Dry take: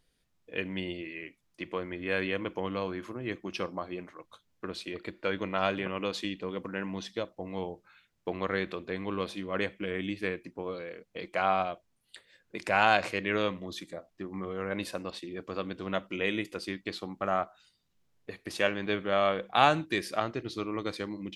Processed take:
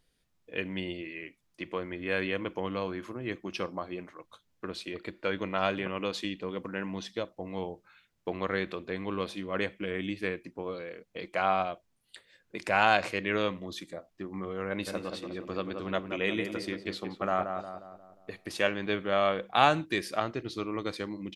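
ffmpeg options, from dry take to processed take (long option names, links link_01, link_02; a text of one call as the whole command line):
ffmpeg -i in.wav -filter_complex "[0:a]asplit=3[link_01][link_02][link_03];[link_01]afade=type=out:start_time=14.86:duration=0.02[link_04];[link_02]asplit=2[link_05][link_06];[link_06]adelay=178,lowpass=frequency=1600:poles=1,volume=-5.5dB,asplit=2[link_07][link_08];[link_08]adelay=178,lowpass=frequency=1600:poles=1,volume=0.51,asplit=2[link_09][link_10];[link_10]adelay=178,lowpass=frequency=1600:poles=1,volume=0.51,asplit=2[link_11][link_12];[link_12]adelay=178,lowpass=frequency=1600:poles=1,volume=0.51,asplit=2[link_13][link_14];[link_14]adelay=178,lowpass=frequency=1600:poles=1,volume=0.51,asplit=2[link_15][link_16];[link_16]adelay=178,lowpass=frequency=1600:poles=1,volume=0.51[link_17];[link_05][link_07][link_09][link_11][link_13][link_15][link_17]amix=inputs=7:normalize=0,afade=type=in:start_time=14.86:duration=0.02,afade=type=out:start_time=18.45:duration=0.02[link_18];[link_03]afade=type=in:start_time=18.45:duration=0.02[link_19];[link_04][link_18][link_19]amix=inputs=3:normalize=0" out.wav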